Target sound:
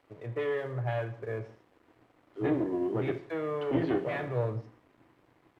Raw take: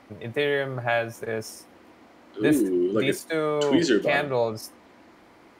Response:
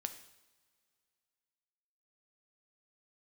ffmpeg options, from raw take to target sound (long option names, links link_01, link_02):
-filter_complex "[0:a]asubboost=boost=3.5:cutoff=240,aeval=exprs='clip(val(0),-1,0.0531)':channel_layout=same,highpass=110,equalizer=frequency=120:width_type=q:width=4:gain=5,equalizer=frequency=200:width_type=q:width=4:gain=-10,equalizer=frequency=440:width_type=q:width=4:gain=4,equalizer=frequency=1500:width_type=q:width=4:gain=-4,equalizer=frequency=2500:width_type=q:width=4:gain=-5,lowpass=frequency=2600:width=0.5412,lowpass=frequency=2600:width=1.3066[link_01];[1:a]atrim=start_sample=2205,afade=type=out:start_time=0.29:duration=0.01,atrim=end_sample=13230,asetrate=52920,aresample=44100[link_02];[link_01][link_02]afir=irnorm=-1:irlink=0,aeval=exprs='sgn(val(0))*max(abs(val(0))-0.00126,0)':channel_layout=same,volume=-2.5dB" -ar 32000 -c:a sbc -b:a 192k